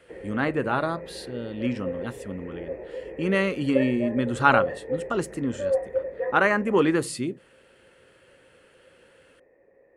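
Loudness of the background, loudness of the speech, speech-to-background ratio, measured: -33.0 LUFS, -25.5 LUFS, 7.5 dB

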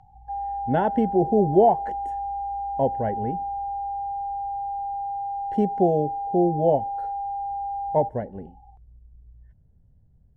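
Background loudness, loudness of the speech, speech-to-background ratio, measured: -30.0 LUFS, -23.5 LUFS, 6.5 dB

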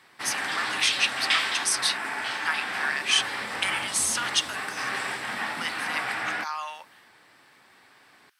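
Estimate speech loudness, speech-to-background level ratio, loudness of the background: -28.0 LUFS, 1.0 dB, -29.0 LUFS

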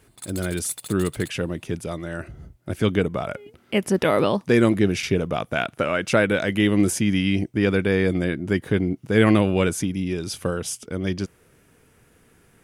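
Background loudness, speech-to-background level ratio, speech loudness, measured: -38.0 LUFS, 15.0 dB, -23.0 LUFS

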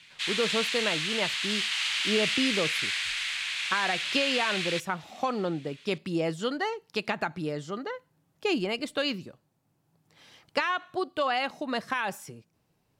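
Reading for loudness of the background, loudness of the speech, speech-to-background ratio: -28.0 LUFS, -30.5 LUFS, -2.5 dB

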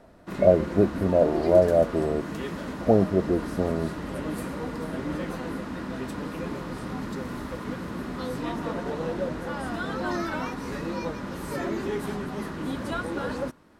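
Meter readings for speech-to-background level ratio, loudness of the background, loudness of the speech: 9.0 dB, -32.5 LUFS, -23.5 LUFS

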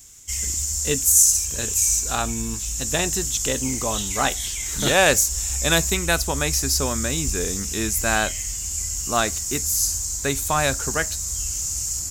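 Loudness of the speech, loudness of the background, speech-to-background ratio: -22.0 LUFS, -24.5 LUFS, 2.5 dB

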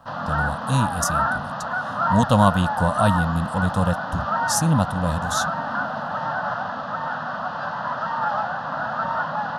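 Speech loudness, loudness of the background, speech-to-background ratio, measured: -23.0 LUFS, -25.5 LUFS, 2.5 dB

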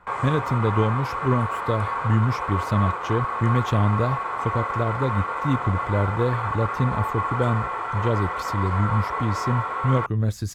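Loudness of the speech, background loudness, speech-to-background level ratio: -25.0 LUFS, -27.5 LUFS, 2.5 dB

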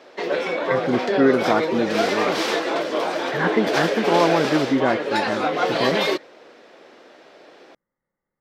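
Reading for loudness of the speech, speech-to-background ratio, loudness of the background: -23.0 LUFS, 0.0 dB, -23.0 LUFS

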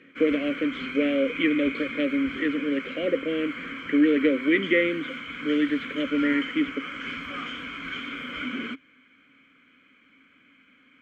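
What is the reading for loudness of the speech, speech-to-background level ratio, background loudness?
-25.5 LUFS, 8.5 dB, -34.0 LUFS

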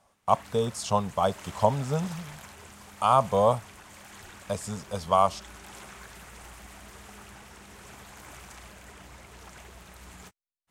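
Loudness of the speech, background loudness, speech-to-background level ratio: -27.0 LUFS, -46.5 LUFS, 19.5 dB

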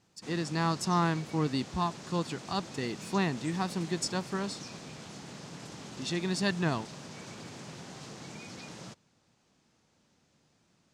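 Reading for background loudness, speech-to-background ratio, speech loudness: -44.5 LUFS, 12.0 dB, -32.5 LUFS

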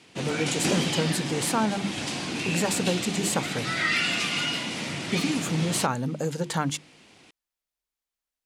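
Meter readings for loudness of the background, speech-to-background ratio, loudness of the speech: -28.0 LUFS, -0.5 dB, -28.5 LUFS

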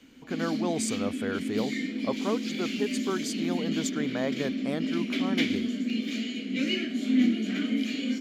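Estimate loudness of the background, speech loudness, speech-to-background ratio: -30.0 LUFS, -34.0 LUFS, -4.0 dB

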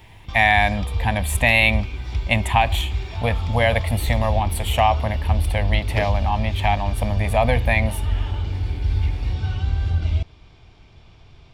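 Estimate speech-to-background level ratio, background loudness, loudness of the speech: 4.0 dB, -25.5 LUFS, -21.5 LUFS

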